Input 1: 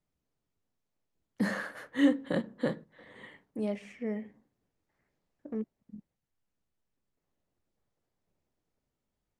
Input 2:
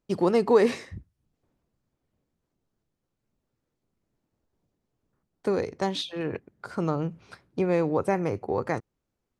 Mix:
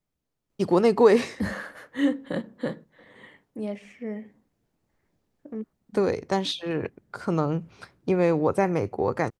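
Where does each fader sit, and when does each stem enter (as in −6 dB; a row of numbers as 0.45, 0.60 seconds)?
+1.0, +2.5 decibels; 0.00, 0.50 seconds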